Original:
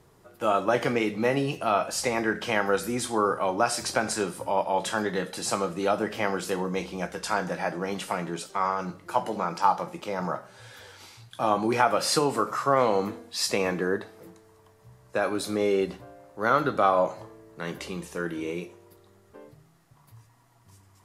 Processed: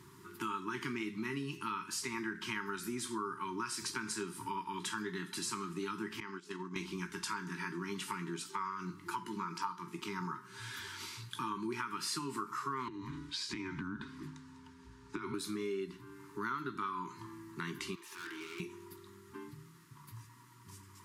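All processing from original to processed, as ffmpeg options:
-filter_complex "[0:a]asettb=1/sr,asplit=3[s0][s1][s2];[s0]atrim=end=6.204[s3];[s1]atrim=start=6.2:end=6.76,asetpts=PTS-STARTPTS,afade=t=in:d=0.004:c=qsin,afade=t=out:st=0.556:d=0.004:c=qsin,agate=range=0.0891:threshold=0.0316:ratio=16:release=100:detection=peak,highpass=140,lowpass=7000,acompressor=threshold=0.00891:ratio=2.5:attack=3.2:release=140:knee=1:detection=peak[s4];[s2]atrim=start=6.756[s5];[s3][s4]acrossfade=d=0.004:c1=hsin:c2=qsin[s6];[s6][s5]acrossfade=d=0.004:c1=qsin:c2=hsin,asettb=1/sr,asplit=3[s7][s8][s9];[s7]atrim=end=12.884[s10];[s8]atrim=start=12.88:end=15.34,asetpts=PTS-STARTPTS,afade=t=in:d=0.004:c=qsin,afade=t=out:st=2.456:d=0.004:c=qsin,lowpass=6200,acompressor=threshold=0.0282:ratio=6:attack=3.2:release=140:knee=1:detection=peak,afreqshift=-180[s11];[s9]atrim=start=15.336[s12];[s10][s11]acrossfade=d=0.004:c1=hsin:c2=qsin[s13];[s13][s12]acrossfade=d=0.004:c1=qsin:c2=hsin,asettb=1/sr,asplit=3[s14][s15][s16];[s14]atrim=end=17.954[s17];[s15]atrim=start=17.95:end=18.6,asetpts=PTS-STARTPTS,afade=t=in:d=0.004:c=qsin,afade=t=out:st=0.646:d=0.004:c=qsin,highpass=f=450:w=0.5412,highpass=f=450:w=1.3066,equalizer=f=8200:w=1.1:g=-8.5,aeval=exprs='(tanh(178*val(0)+0.2)-tanh(0.2))/178':c=same[s18];[s16]atrim=start=18.596[s19];[s17][s18]acrossfade=d=0.004:c1=hsin:c2=qsin[s20];[s20][s19]acrossfade=d=0.004:c1=qsin:c2=hsin,highpass=110,afftfilt=real='re*(1-between(b*sr/4096,410,880))':imag='im*(1-between(b*sr/4096,410,880))':win_size=4096:overlap=0.75,acompressor=threshold=0.00708:ratio=4,volume=1.58"

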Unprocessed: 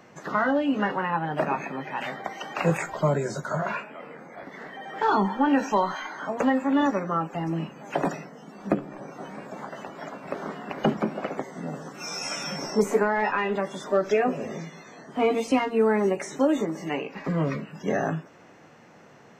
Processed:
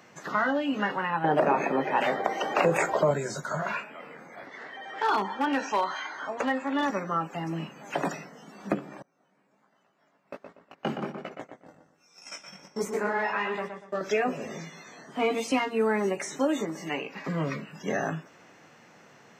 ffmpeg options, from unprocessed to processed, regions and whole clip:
-filter_complex "[0:a]asettb=1/sr,asplit=3[s0][s1][s2];[s0]atrim=end=1.244[s3];[s1]atrim=start=1.24:end=3.11,asetpts=PTS-STARTPTS,afade=t=in:d=0.004:c=qsin,afade=t=out:st=1.866:d=0.004:c=qsin,equalizer=f=470:w=0.56:g=15,acompressor=threshold=0.2:ratio=6:attack=3.2:release=140:knee=1:detection=peak[s4];[s2]atrim=start=3.106[s5];[s3][s4]acrossfade=d=0.004:c1=hsin:c2=qsin[s6];[s6][s5]acrossfade=d=0.004:c1=qsin:c2=hsin,asettb=1/sr,asplit=3[s7][s8][s9];[s7]atrim=end=4.464[s10];[s8]atrim=start=4.46:end=6.9,asetpts=PTS-STARTPTS,afade=t=in:d=0.004:c=qsin,afade=t=out:st=2.436:d=0.004:c=qsin,lowpass=6200,asoftclip=type=hard:threshold=0.178,equalizer=f=180:t=o:w=0.75:g=-10.5[s11];[s9]atrim=start=6.896[s12];[s10][s11]acrossfade=d=0.004:c1=hsin:c2=qsin[s13];[s13][s12]acrossfade=d=0.004:c1=qsin:c2=hsin,asettb=1/sr,asplit=3[s14][s15][s16];[s14]atrim=end=9.024[s17];[s15]atrim=start=9.02:end=14.01,asetpts=PTS-STARTPTS,afade=t=in:d=0.004:c=qsin,afade=t=out:st=4.986:d=0.004:c=qsin,agate=range=0.0562:threshold=0.0282:ratio=16:release=100:detection=peak,flanger=delay=16.5:depth=5.3:speed=1.3,asplit=2[s18][s19];[s19]adelay=120,lowpass=f=3100:p=1,volume=0.501,asplit=2[s20][s21];[s21]adelay=120,lowpass=f=3100:p=1,volume=0.33,asplit=2[s22][s23];[s23]adelay=120,lowpass=f=3100:p=1,volume=0.33,asplit=2[s24][s25];[s25]adelay=120,lowpass=f=3100:p=1,volume=0.33[s26];[s18][s20][s22][s24][s26]amix=inputs=5:normalize=0,atrim=end_sample=220059[s27];[s16]atrim=start=14.006[s28];[s17][s27]acrossfade=d=0.004:c1=hsin:c2=qsin[s29];[s29][s28]acrossfade=d=0.004:c1=qsin:c2=hsin,highpass=f=190:p=1,equalizer=f=470:w=0.36:g=-6,volume=1.33"

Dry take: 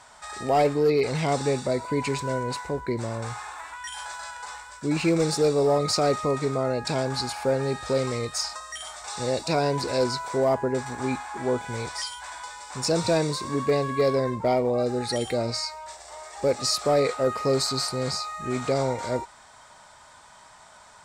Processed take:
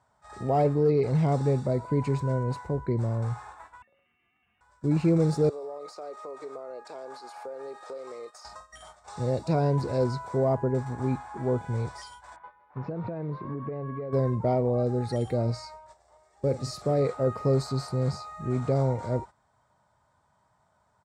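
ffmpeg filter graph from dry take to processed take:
-filter_complex "[0:a]asettb=1/sr,asplit=3[s0][s1][s2];[s0]atrim=end=3.824[s3];[s1]atrim=start=3.82:end=4.61,asetpts=PTS-STARTPTS,afade=t=in:d=0.004:c=qsin,afade=t=out:st=0.786:d=0.004:c=qsin,acrossover=split=1300|2600[s4][s5][s6];[s4]acompressor=threshold=0.00251:ratio=4[s7];[s5]acompressor=threshold=0.00178:ratio=4[s8];[s6]acompressor=threshold=0.00501:ratio=4[s9];[s7][s8][s9]amix=inputs=3:normalize=0,lowpass=f=3100:t=q:w=0.5098,lowpass=f=3100:t=q:w=0.6013,lowpass=f=3100:t=q:w=0.9,lowpass=f=3100:t=q:w=2.563,afreqshift=-3700,asubboost=boost=6.5:cutoff=120[s10];[s2]atrim=start=4.606[s11];[s3][s10]acrossfade=d=0.004:c1=hsin:c2=qsin[s12];[s12][s11]acrossfade=d=0.004:c1=qsin:c2=hsin,asettb=1/sr,asplit=3[s13][s14][s15];[s13]atrim=end=5.494[s16];[s14]atrim=start=5.49:end=8.45,asetpts=PTS-STARTPTS,afade=t=in:d=0.004:c=qsin,afade=t=out:st=2.956:d=0.004:c=qsin,highpass=f=410:w=0.5412,highpass=f=410:w=1.3066,acompressor=threshold=0.0251:ratio=8:attack=3.2:release=140:knee=1:detection=peak,aeval=exprs='val(0)+0.00282*sin(2*PI*1200*n/s)':c=same[s17];[s15]atrim=start=8.446[s18];[s16][s17]acrossfade=d=0.004:c1=hsin:c2=qsin[s19];[s19][s18]acrossfade=d=0.004:c1=qsin:c2=hsin,asettb=1/sr,asplit=3[s20][s21][s22];[s20]atrim=end=12.364[s23];[s21]atrim=start=12.36:end=14.13,asetpts=PTS-STARTPTS,afade=t=in:d=0.004:c=qsin,afade=t=out:st=1.766:d=0.004:c=qsin,lowpass=f=2500:w=0.5412,lowpass=f=2500:w=1.3066,equalizer=f=76:t=o:w=1.1:g=-10.5,acompressor=threshold=0.0355:ratio=12:attack=3.2:release=140:knee=1:detection=peak[s24];[s22]atrim=start=14.126[s25];[s23][s24]acrossfade=d=0.004:c1=hsin:c2=qsin[s26];[s26][s25]acrossfade=d=0.004:c1=qsin:c2=hsin,asettb=1/sr,asplit=3[s27][s28][s29];[s27]atrim=end=16.174[s30];[s28]atrim=start=16.17:end=17.02,asetpts=PTS-STARTPTS,afade=t=in:d=0.004:c=qsin,afade=t=out:st=0.846:d=0.004:c=qsin,equalizer=f=970:w=1.1:g=-5.5,asplit=2[s31][s32];[s32]adelay=44,volume=0.224[s33];[s31][s33]amix=inputs=2:normalize=0,atrim=end_sample=37485[s34];[s29]atrim=start=17.016[s35];[s30][s34]acrossfade=d=0.004:c1=hsin:c2=qsin[s36];[s36][s35]acrossfade=d=0.004:c1=qsin:c2=hsin,highpass=76,agate=range=0.251:threshold=0.0126:ratio=16:detection=peak,firequalizer=gain_entry='entry(130,0);entry(250,-8);entry(2500,-22)':delay=0.05:min_phase=1,volume=2.24"

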